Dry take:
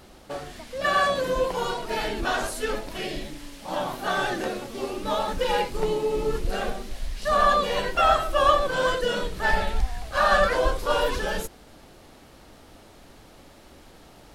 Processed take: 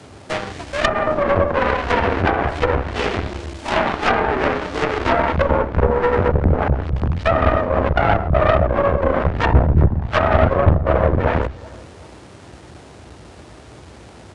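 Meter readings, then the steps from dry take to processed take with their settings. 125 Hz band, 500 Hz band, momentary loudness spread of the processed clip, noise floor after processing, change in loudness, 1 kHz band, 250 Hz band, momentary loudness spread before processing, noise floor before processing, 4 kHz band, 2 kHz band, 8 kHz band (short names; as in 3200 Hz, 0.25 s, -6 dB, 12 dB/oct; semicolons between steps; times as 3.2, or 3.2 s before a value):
+19.0 dB, +7.0 dB, 7 LU, -42 dBFS, +6.5 dB, +4.5 dB, +12.0 dB, 13 LU, -50 dBFS, -0.5 dB, +4.5 dB, n/a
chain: half-waves squared off; treble ducked by the level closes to 520 Hz, closed at -17 dBFS; dynamic EQ 1500 Hz, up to +5 dB, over -40 dBFS, Q 0.82; frequency shift +54 Hz; feedback echo 0.374 s, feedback 40%, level -20 dB; added harmonics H 4 -19 dB, 8 -17 dB, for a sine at -4.5 dBFS; downsampling 22050 Hz; gain +3.5 dB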